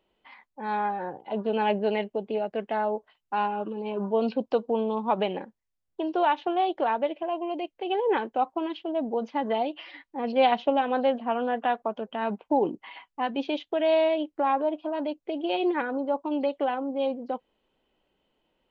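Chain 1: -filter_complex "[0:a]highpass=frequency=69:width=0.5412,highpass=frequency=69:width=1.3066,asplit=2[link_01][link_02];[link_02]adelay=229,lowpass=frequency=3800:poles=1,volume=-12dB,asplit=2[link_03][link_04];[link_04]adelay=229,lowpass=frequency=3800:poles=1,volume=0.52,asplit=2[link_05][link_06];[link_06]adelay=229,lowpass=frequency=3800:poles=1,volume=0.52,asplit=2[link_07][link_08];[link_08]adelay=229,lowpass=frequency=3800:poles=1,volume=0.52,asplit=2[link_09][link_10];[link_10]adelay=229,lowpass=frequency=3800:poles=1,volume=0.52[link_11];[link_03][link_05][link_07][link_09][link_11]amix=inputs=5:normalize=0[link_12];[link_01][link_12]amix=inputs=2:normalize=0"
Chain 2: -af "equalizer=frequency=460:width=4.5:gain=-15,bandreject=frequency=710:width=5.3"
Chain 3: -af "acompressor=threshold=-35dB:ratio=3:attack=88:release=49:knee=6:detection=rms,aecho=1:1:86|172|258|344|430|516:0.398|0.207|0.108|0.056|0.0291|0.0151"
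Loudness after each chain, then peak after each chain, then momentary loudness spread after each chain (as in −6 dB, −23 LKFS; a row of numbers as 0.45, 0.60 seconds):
−27.5, −31.5, −32.5 LKFS; −9.5, −13.0, −18.0 dBFS; 9, 9, 6 LU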